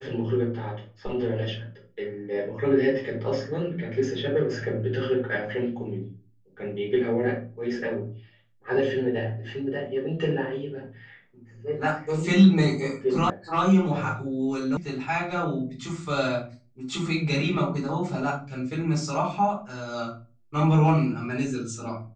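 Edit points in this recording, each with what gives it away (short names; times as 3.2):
13.3 sound cut off
14.77 sound cut off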